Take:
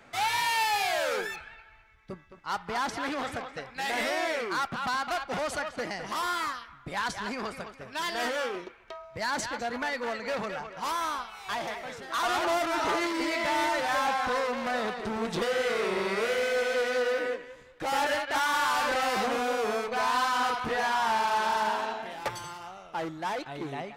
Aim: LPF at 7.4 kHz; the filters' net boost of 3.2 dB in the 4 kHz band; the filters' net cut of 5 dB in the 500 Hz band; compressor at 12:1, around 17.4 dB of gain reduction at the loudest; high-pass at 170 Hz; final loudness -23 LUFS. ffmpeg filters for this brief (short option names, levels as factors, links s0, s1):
-af "highpass=170,lowpass=7400,equalizer=f=500:t=o:g=-6,equalizer=f=4000:t=o:g=4.5,acompressor=threshold=0.00794:ratio=12,volume=12.6"